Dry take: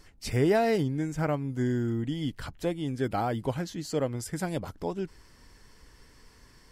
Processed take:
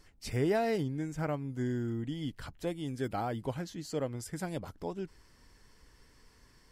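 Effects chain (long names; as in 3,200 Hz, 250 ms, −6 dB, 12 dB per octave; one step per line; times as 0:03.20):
0:02.67–0:03.12: high-shelf EQ 5,400 Hz +6.5 dB
level −5.5 dB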